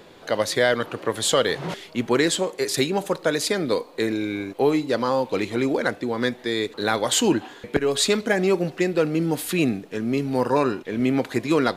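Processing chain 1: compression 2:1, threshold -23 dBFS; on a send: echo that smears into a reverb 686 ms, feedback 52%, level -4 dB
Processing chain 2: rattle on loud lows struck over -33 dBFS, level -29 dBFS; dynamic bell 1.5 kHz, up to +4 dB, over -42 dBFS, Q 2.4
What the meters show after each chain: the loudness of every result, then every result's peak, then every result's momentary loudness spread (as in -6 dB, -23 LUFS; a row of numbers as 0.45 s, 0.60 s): -24.5 LUFS, -23.0 LUFS; -7.5 dBFS, -5.5 dBFS; 3 LU, 6 LU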